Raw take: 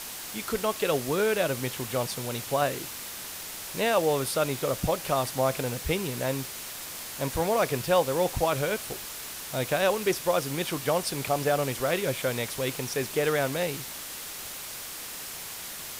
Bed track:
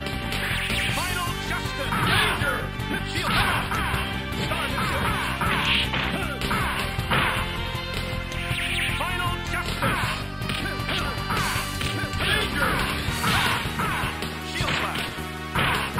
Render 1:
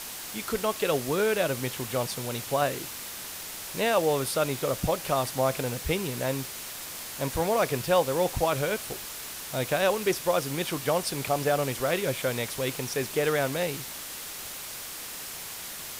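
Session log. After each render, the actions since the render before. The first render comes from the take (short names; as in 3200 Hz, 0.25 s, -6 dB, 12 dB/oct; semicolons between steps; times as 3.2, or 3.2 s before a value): nothing audible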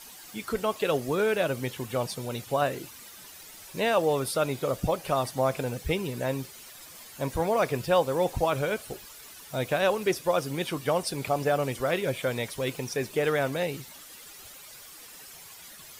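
denoiser 12 dB, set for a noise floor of -39 dBFS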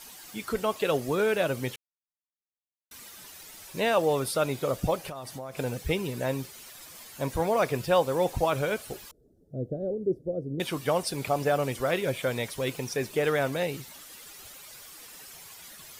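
1.76–2.91 mute; 5.08–5.59 compressor 8:1, threshold -35 dBFS; 9.11–10.6 inverse Chebyshev low-pass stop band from 950 Hz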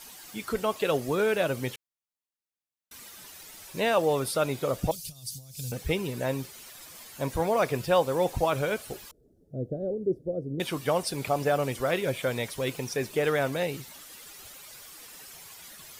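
4.91–5.72 EQ curve 140 Hz 0 dB, 330 Hz -20 dB, 1100 Hz -29 dB, 1900 Hz -21 dB, 4700 Hz +7 dB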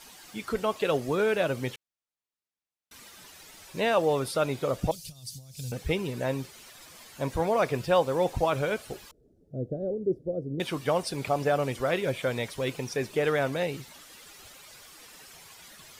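high shelf 10000 Hz -10.5 dB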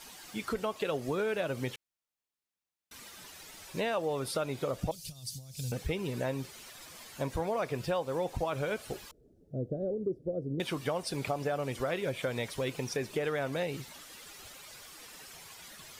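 compressor 4:1, threshold -30 dBFS, peak gain reduction 10.5 dB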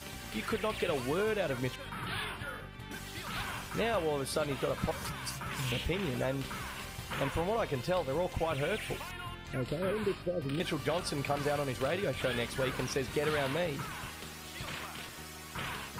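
add bed track -16.5 dB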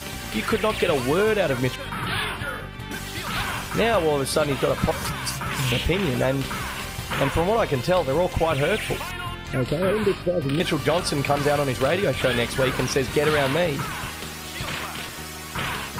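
gain +11 dB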